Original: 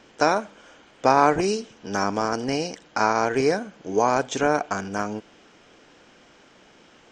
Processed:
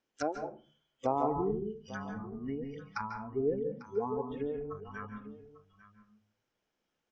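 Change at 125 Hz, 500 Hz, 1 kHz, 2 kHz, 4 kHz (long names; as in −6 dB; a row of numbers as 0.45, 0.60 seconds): −8.5 dB, −11.0 dB, −15.5 dB, −19.0 dB, below −20 dB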